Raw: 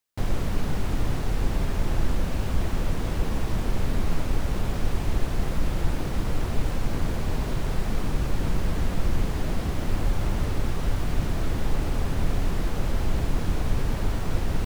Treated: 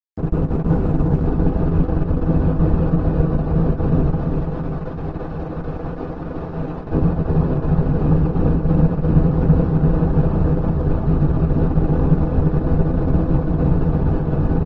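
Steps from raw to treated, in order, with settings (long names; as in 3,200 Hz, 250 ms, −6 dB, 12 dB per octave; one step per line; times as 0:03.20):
loose part that buzzes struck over −29 dBFS, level −28 dBFS
asymmetric clip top −33 dBFS
0:04.19–0:06.92: low-shelf EQ 370 Hz −11 dB
convolution reverb RT60 0.10 s, pre-delay 3 ms, DRR −3 dB
dead-zone distortion −37 dBFS
low-pass filter 1,300 Hz 12 dB per octave
repeating echo 337 ms, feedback 58%, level −5 dB
Opus 20 kbit/s 48,000 Hz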